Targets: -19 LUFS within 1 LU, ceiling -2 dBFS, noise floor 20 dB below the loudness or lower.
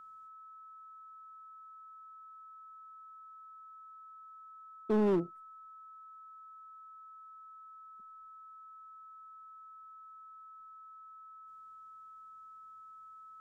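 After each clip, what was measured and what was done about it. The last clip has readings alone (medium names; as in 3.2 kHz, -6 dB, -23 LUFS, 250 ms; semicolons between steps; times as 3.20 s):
clipped samples 0.5%; clipping level -24.5 dBFS; steady tone 1.3 kHz; tone level -50 dBFS; loudness -43.5 LUFS; peak level -24.5 dBFS; loudness target -19.0 LUFS
-> clip repair -24.5 dBFS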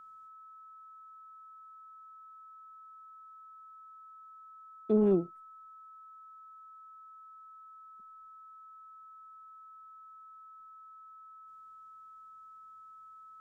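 clipped samples 0.0%; steady tone 1.3 kHz; tone level -50 dBFS
-> band-stop 1.3 kHz, Q 30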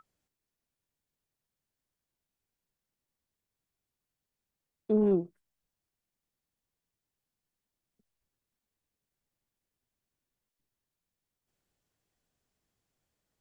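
steady tone not found; loudness -28.0 LUFS; peak level -16.5 dBFS; loudness target -19.0 LUFS
-> trim +9 dB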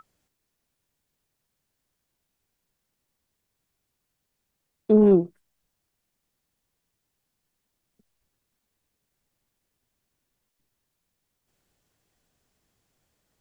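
loudness -19.0 LUFS; peak level -7.5 dBFS; noise floor -80 dBFS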